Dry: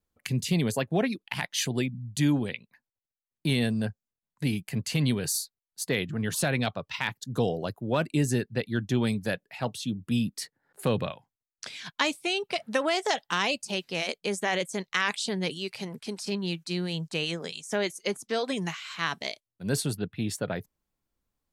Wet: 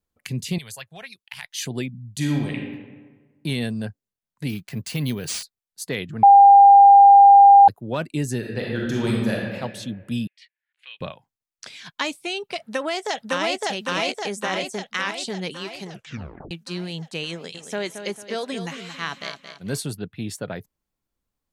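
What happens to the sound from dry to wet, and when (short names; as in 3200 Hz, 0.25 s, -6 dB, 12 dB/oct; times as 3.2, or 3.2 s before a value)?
0.58–1.63 passive tone stack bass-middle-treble 10-0-10
2.15–2.55 reverb throw, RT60 1.4 s, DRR 0.5 dB
4.49–5.43 careless resampling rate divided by 3×, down none, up hold
6.23–7.68 bleep 800 Hz -6 dBFS
8.38–9.55 reverb throw, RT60 1.5 s, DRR -3 dB
10.27–11.01 Butterworth band-pass 2700 Hz, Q 2
12.63–13.62 echo throw 0.56 s, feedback 60%, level 0 dB
15.88 tape stop 0.63 s
17.32–19.78 feedback echo 0.224 s, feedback 37%, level -9 dB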